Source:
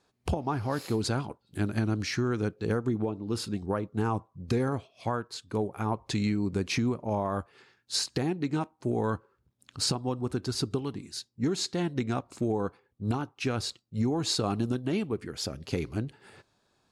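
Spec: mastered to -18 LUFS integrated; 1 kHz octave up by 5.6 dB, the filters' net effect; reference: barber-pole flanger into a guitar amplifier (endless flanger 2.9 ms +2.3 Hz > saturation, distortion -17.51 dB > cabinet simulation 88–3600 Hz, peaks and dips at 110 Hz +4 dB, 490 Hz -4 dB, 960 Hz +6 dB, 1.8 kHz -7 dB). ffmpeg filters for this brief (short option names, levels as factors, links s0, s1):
-filter_complex "[0:a]equalizer=f=1000:t=o:g=3.5,asplit=2[s0][s1];[s1]adelay=2.9,afreqshift=2.3[s2];[s0][s2]amix=inputs=2:normalize=1,asoftclip=threshold=0.0596,highpass=88,equalizer=f=110:t=q:w=4:g=4,equalizer=f=490:t=q:w=4:g=-4,equalizer=f=960:t=q:w=4:g=6,equalizer=f=1800:t=q:w=4:g=-7,lowpass=f=3600:w=0.5412,lowpass=f=3600:w=1.3066,volume=7.5"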